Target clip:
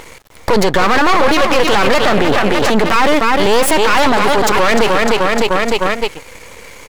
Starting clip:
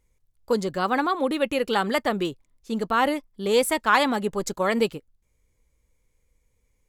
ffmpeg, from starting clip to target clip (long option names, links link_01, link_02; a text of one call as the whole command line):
ffmpeg -i in.wav -filter_complex "[0:a]lowshelf=frequency=380:gain=-7.5,aecho=1:1:303|606|909|1212:0.266|0.104|0.0405|0.0158,asplit=2[link_01][link_02];[link_02]highpass=frequency=720:poles=1,volume=26dB,asoftclip=type=tanh:threshold=-7dB[link_03];[link_01][link_03]amix=inputs=2:normalize=0,lowpass=frequency=1500:poles=1,volume=-6dB,asettb=1/sr,asplit=3[link_04][link_05][link_06];[link_04]atrim=end=2.184[link_07];[link_05]atrim=start=2.18:end=2.96,asetpts=PTS-STARTPTS,afade=type=in:duration=0.004:curve=qsin,afade=type=out:start_time=0.776:duration=0.004:curve=qsin,acrossover=split=300[link_08][link_09];[link_09]acompressor=threshold=-25dB:ratio=2.5[link_10];[link_08][link_10]amix=inputs=2:normalize=0[link_11];[link_06]atrim=start=2.956[link_12];[link_07][link_11]acrossfade=duration=0.004:curve1=hsin:curve2=qsin[link_13];[link_13][link_12]acrossfade=duration=0.004:curve1=qsin:curve2=hsin,asettb=1/sr,asplit=3[link_14][link_15][link_16];[link_14]atrim=end=4.094[link_17];[link_15]atrim=start=4.09:end=4.53,asetpts=PTS-STARTPTS,afade=type=in:duration=0.004:curve=qsin,afade=type=out:start_time=0.436:duration=0.004:curve=qsin,equalizer=frequency=1500:width=2.5:gain=-11.5[link_18];[link_16]atrim=start=4.526[link_19];[link_17][link_18]acrossfade=duration=0.004:curve1=hsin:curve2=qsin[link_20];[link_20][link_19]acrossfade=duration=0.004:curve1=qsin:curve2=hsin,aeval=exprs='max(val(0),0)':channel_layout=same,acompressor=threshold=-32dB:ratio=6,alimiter=level_in=34.5dB:limit=-1dB:release=50:level=0:latency=1,volume=-1dB" out.wav